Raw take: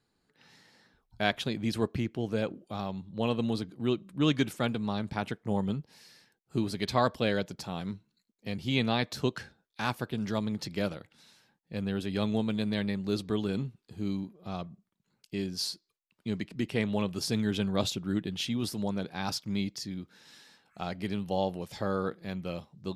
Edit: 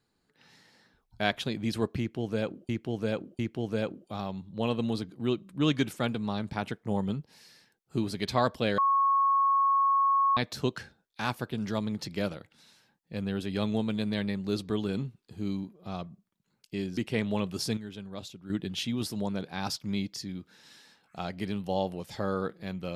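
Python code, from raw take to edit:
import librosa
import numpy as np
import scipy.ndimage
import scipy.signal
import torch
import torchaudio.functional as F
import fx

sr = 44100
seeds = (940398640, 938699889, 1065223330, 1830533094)

y = fx.edit(x, sr, fx.repeat(start_s=1.99, length_s=0.7, count=3),
    fx.bleep(start_s=7.38, length_s=1.59, hz=1100.0, db=-21.0),
    fx.cut(start_s=15.57, length_s=1.02),
    fx.fade_down_up(start_s=17.23, length_s=1.05, db=-12.0, fade_s=0.16, curve='log'), tone=tone)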